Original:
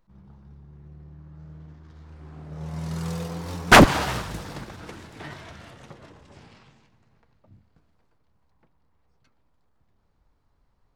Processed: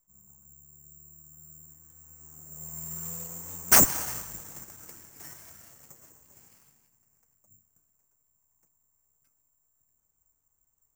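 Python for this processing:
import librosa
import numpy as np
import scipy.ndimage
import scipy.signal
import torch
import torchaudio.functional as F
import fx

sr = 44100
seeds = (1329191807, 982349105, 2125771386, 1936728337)

y = scipy.signal.sosfilt(scipy.signal.cheby1(6, 3, 6500.0, 'lowpass', fs=sr, output='sos'), x)
y = (np.kron(scipy.signal.resample_poly(y, 1, 6), np.eye(6)[0]) * 6)[:len(y)]
y = y * librosa.db_to_amplitude(-12.5)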